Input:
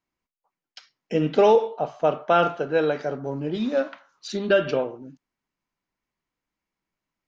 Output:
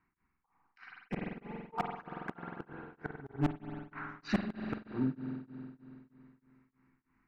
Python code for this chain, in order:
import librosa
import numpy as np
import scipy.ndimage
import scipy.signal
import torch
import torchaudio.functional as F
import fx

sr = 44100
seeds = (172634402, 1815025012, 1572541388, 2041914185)

p1 = scipy.signal.sosfilt(scipy.signal.butter(4, 3100.0, 'lowpass', fs=sr, output='sos'), x)
p2 = fx.rider(p1, sr, range_db=4, speed_s=0.5)
p3 = p1 + (p2 * librosa.db_to_amplitude(-3.0))
p4 = fx.gate_flip(p3, sr, shuts_db=-14.0, range_db=-39)
p5 = fx.fixed_phaser(p4, sr, hz=1400.0, stages=4)
p6 = np.clip(p5, -10.0 ** (-32.5 / 20.0), 10.0 ** (-32.5 / 20.0))
p7 = fx.rev_spring(p6, sr, rt60_s=2.9, pass_ms=(46,), chirp_ms=20, drr_db=3.5)
p8 = p7 * np.abs(np.cos(np.pi * 3.2 * np.arange(len(p7)) / sr))
y = p8 * librosa.db_to_amplitude(9.5)